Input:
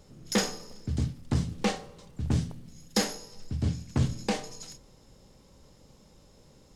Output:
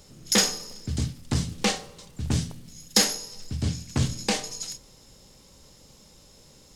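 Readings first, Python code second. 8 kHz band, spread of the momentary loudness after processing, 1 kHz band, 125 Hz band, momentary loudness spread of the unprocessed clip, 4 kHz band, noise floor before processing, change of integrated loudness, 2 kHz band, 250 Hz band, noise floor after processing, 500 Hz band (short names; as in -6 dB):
+10.5 dB, 15 LU, +2.5 dB, +1.0 dB, 15 LU, +9.5 dB, -58 dBFS, +4.5 dB, +5.5 dB, +1.0 dB, -54 dBFS, +1.5 dB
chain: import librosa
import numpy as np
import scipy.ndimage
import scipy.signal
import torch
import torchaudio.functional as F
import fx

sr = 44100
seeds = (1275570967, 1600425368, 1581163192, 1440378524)

y = fx.high_shelf(x, sr, hz=2200.0, db=10.5)
y = y * librosa.db_to_amplitude(1.0)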